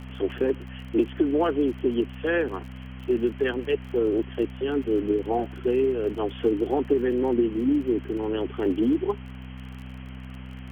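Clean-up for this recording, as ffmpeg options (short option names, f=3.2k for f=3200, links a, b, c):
-af "adeclick=t=4,bandreject=f=63.9:t=h:w=4,bandreject=f=127.8:t=h:w=4,bandreject=f=191.7:t=h:w=4,bandreject=f=255.6:t=h:w=4,afwtdn=0.0071"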